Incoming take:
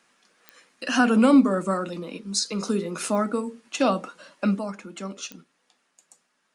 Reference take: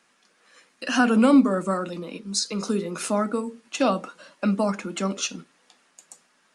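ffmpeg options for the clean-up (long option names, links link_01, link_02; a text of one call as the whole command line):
ffmpeg -i in.wav -af "adeclick=threshold=4,asetnsamples=nb_out_samples=441:pad=0,asendcmd='4.59 volume volume 8dB',volume=0dB" out.wav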